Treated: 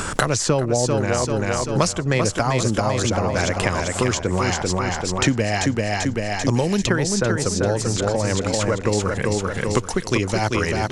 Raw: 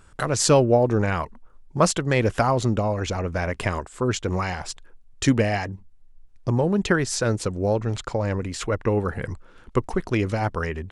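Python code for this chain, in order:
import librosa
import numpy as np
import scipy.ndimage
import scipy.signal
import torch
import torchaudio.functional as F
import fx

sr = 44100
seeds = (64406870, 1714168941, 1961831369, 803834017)

p1 = fx.peak_eq(x, sr, hz=6500.0, db=7.0, octaves=1.2)
p2 = p1 + fx.echo_feedback(p1, sr, ms=390, feedback_pct=40, wet_db=-5, dry=0)
y = fx.band_squash(p2, sr, depth_pct=100)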